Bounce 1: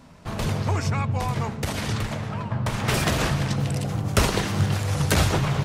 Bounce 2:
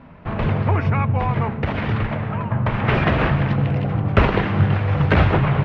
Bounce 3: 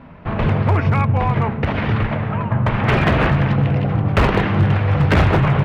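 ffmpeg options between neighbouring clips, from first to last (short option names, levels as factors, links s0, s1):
-af "lowpass=f=2600:w=0.5412,lowpass=f=2600:w=1.3066,volume=1.88"
-af "asoftclip=type=hard:threshold=0.251,volume=1.41"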